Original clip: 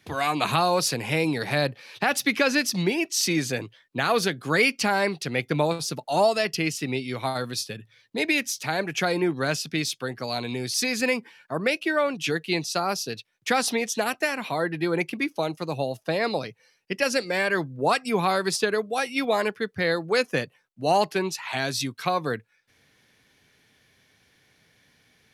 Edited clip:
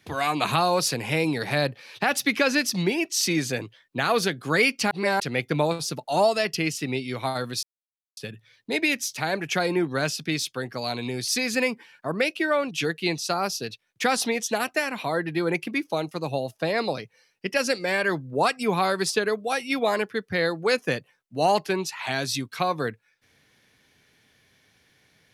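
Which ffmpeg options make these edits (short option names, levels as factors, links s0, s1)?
-filter_complex "[0:a]asplit=4[s0][s1][s2][s3];[s0]atrim=end=4.912[s4];[s1]atrim=start=4.908:end=5.202,asetpts=PTS-STARTPTS,areverse[s5];[s2]atrim=start=5.198:end=7.63,asetpts=PTS-STARTPTS,afade=t=out:st=2.428:d=0.004:c=hsin,apad=pad_dur=0.54[s6];[s3]atrim=start=7.63,asetpts=PTS-STARTPTS,afade=t=in:d=0.004:c=hsin[s7];[s4][s5]acrossfade=d=0.004:c1=hsin:c2=hsin[s8];[s6][s7]concat=n=2:v=0:a=1[s9];[s8][s9]acrossfade=d=0.004:c1=hsin:c2=hsin"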